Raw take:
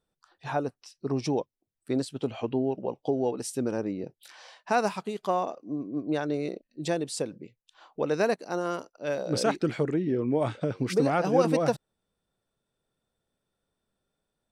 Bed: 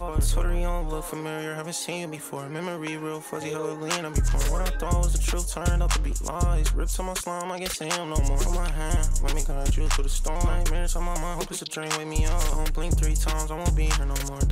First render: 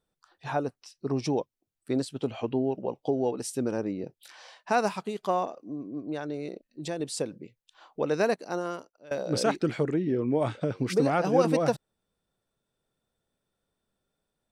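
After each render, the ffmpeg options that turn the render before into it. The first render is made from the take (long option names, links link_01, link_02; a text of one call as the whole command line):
ffmpeg -i in.wav -filter_complex "[0:a]asettb=1/sr,asplit=3[link_01][link_02][link_03];[link_01]atrim=end=5.464[link_04];[link_02]atrim=start=5.46:end=7,asetpts=PTS-STARTPTS,afade=type=in:duration=0.004:curve=qsin,afade=type=out:start_time=1.536:duration=0.004:curve=qsin,acompressor=threshold=-38dB:ratio=1.5:attack=3.2:release=140:knee=1:detection=peak[link_05];[link_03]atrim=start=6.996[link_06];[link_04][link_05]acrossfade=duration=0.004:curve1=hsin:curve2=qsin[link_07];[link_07][link_06]acrossfade=duration=0.004:curve1=qsin:curve2=hsin,asplit=2[link_08][link_09];[link_08]atrim=end=9.11,asetpts=PTS-STARTPTS,afade=type=out:start_time=8.49:duration=0.62:silence=0.0841395[link_10];[link_09]atrim=start=9.11,asetpts=PTS-STARTPTS,afade=type=in:duration=0.004:curve=hsin:silence=0.0841395[link_11];[link_10][link_11]concat=n=2:v=0:a=1" out.wav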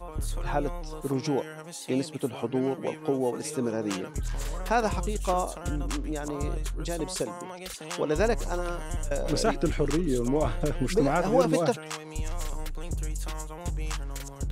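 ffmpeg -i in.wav -i bed.wav -filter_complex "[1:a]volume=-9dB[link_01];[0:a][link_01]amix=inputs=2:normalize=0" out.wav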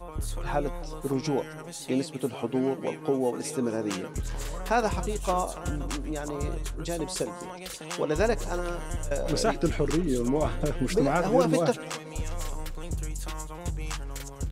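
ffmpeg -i in.wav -filter_complex "[0:a]asplit=2[link_01][link_02];[link_02]adelay=12,volume=-12.5dB[link_03];[link_01][link_03]amix=inputs=2:normalize=0,aecho=1:1:262|524|786|1048|1310:0.0891|0.0517|0.03|0.0174|0.0101" out.wav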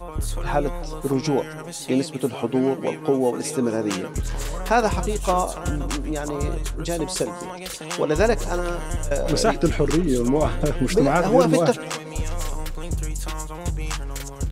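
ffmpeg -i in.wav -af "volume=6dB" out.wav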